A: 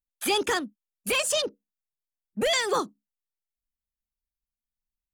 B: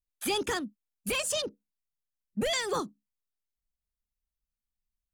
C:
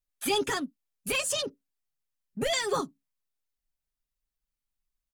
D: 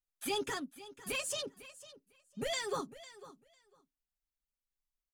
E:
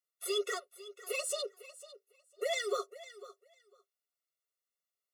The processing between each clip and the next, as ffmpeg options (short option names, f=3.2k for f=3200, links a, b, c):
-af "bass=f=250:g=10,treble=f=4k:g=2,volume=-6dB"
-af "aecho=1:1:7.3:0.63"
-af "aecho=1:1:501|1002:0.15|0.0239,volume=-8dB"
-af "afftfilt=real='re*eq(mod(floor(b*sr/1024/370),2),1)':imag='im*eq(mod(floor(b*sr/1024/370),2),1)':win_size=1024:overlap=0.75,volume=4dB"